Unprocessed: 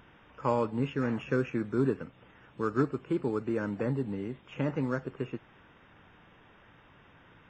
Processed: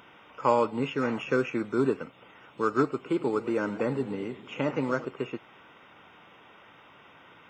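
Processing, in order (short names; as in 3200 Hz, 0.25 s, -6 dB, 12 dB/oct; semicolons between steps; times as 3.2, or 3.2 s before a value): HPF 480 Hz 6 dB/oct; notch 1700 Hz, Q 6.4; 2.94–5.05 warbling echo 0.109 s, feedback 60%, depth 179 cents, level -15.5 dB; gain +7.5 dB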